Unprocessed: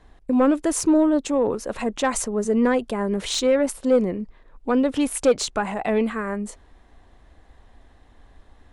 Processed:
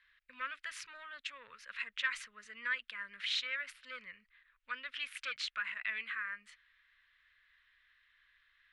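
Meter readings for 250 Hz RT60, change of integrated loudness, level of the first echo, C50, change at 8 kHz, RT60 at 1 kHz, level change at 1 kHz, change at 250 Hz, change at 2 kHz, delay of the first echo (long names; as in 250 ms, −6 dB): no reverb audible, −17.5 dB, no echo audible, no reverb audible, −24.5 dB, no reverb audible, −19.5 dB, below −40 dB, −3.5 dB, no echo audible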